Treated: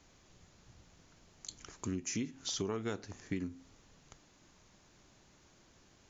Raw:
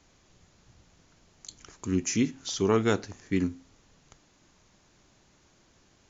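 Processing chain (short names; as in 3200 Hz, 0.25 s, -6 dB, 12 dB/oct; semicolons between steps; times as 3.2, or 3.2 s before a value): compressor 10:1, threshold -32 dBFS, peak gain reduction 13.5 dB; gain -1.5 dB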